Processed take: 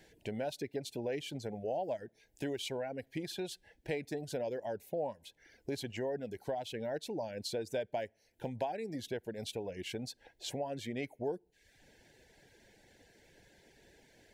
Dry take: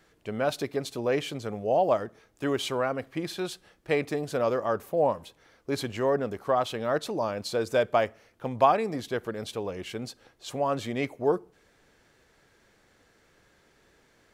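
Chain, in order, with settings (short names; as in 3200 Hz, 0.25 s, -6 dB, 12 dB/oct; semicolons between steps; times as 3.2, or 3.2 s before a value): reverb removal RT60 0.63 s; compressor 2.5:1, threshold -42 dBFS, peak gain reduction 17.5 dB; Butterworth band-stop 1200 Hz, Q 1.7; gain +2 dB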